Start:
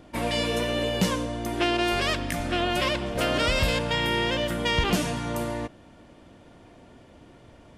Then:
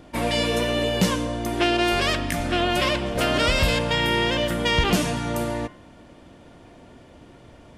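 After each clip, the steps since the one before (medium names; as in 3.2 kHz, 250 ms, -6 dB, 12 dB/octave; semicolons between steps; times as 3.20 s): de-hum 104.7 Hz, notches 31; trim +3.5 dB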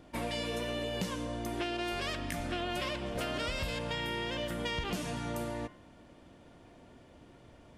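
compression 4:1, threshold -24 dBFS, peak gain reduction 8.5 dB; trim -8.5 dB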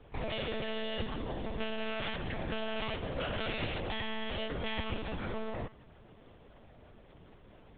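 monotone LPC vocoder at 8 kHz 220 Hz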